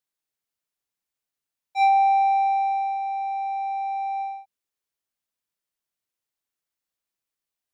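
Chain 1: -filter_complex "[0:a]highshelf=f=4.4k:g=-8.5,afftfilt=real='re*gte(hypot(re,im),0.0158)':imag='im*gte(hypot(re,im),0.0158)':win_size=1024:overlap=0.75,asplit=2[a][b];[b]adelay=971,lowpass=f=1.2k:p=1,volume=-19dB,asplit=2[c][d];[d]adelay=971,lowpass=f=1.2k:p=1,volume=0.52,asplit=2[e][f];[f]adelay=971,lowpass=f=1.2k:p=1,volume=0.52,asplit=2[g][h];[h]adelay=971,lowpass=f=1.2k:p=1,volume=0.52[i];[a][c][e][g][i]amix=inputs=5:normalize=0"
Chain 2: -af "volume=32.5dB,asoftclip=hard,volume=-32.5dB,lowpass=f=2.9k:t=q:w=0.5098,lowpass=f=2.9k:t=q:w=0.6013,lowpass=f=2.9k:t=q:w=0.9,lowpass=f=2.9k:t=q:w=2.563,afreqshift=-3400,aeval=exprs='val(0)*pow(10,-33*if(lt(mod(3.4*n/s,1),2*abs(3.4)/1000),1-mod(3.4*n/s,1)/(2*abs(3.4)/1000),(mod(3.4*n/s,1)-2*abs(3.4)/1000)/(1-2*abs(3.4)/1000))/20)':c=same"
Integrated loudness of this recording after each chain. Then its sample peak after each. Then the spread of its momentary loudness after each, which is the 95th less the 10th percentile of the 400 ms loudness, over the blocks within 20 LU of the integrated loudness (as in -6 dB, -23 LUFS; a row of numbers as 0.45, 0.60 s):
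-24.0, -39.5 LUFS; -14.5, -28.0 dBFS; 14, 5 LU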